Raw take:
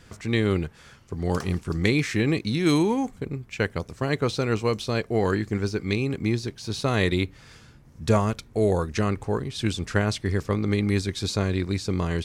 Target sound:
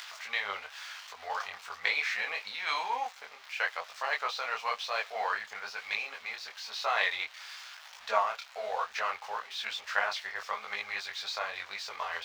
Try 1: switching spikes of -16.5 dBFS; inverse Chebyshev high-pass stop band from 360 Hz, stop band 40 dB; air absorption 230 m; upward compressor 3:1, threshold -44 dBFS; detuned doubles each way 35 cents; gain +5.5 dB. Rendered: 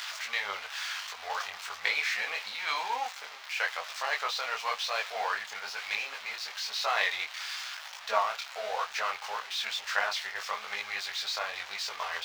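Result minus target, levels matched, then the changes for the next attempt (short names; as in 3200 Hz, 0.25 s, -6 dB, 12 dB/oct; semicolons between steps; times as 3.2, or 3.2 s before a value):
switching spikes: distortion +9 dB
change: switching spikes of -25.5 dBFS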